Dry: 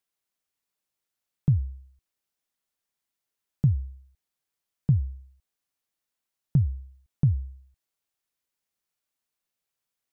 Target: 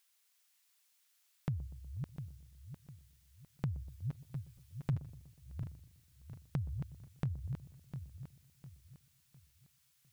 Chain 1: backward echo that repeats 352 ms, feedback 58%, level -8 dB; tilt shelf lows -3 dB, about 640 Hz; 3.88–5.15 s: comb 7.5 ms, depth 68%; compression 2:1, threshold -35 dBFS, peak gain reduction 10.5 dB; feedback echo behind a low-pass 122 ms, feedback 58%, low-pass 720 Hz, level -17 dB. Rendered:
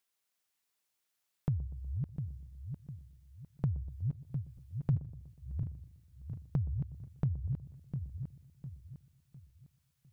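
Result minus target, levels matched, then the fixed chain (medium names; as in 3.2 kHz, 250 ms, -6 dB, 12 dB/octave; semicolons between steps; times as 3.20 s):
500 Hz band -3.0 dB
backward echo that repeats 352 ms, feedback 58%, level -8 dB; tilt shelf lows -12.5 dB, about 640 Hz; 3.88–5.15 s: comb 7.5 ms, depth 68%; compression 2:1, threshold -35 dBFS, peak gain reduction 6.5 dB; feedback echo behind a low-pass 122 ms, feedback 58%, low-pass 720 Hz, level -17 dB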